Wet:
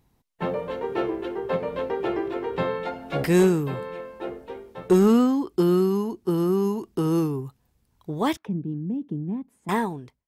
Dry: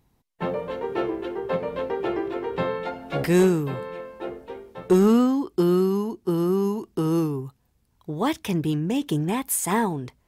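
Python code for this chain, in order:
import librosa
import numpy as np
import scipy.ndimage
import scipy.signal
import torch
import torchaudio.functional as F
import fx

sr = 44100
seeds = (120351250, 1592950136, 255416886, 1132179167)

y = fx.fade_out_tail(x, sr, length_s=0.62)
y = fx.auto_wah(y, sr, base_hz=210.0, top_hz=1400.0, q=2.4, full_db=-30.0, direction='down', at=(8.37, 9.69))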